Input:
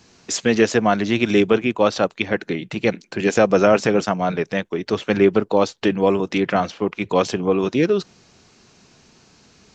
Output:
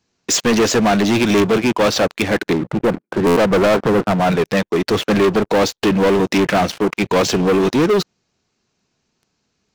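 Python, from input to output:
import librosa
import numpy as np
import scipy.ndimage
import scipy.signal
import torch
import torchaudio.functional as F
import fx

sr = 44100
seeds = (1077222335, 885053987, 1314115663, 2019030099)

y = fx.cheby1_bandpass(x, sr, low_hz=100.0, high_hz=1400.0, order=3, at=(2.53, 4.2))
y = fx.leveller(y, sr, passes=5)
y = fx.buffer_glitch(y, sr, at_s=(3.26,), block=512, repeats=8)
y = F.gain(torch.from_numpy(y), -7.5).numpy()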